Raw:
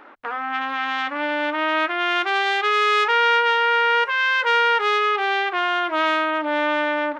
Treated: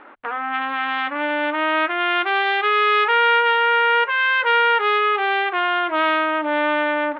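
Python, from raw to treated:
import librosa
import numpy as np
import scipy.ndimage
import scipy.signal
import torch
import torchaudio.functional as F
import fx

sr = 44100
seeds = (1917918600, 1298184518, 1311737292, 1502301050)

y = scipy.signal.sosfilt(scipy.signal.butter(4, 3500.0, 'lowpass', fs=sr, output='sos'), x)
y = y * 10.0 ** (1.5 / 20.0)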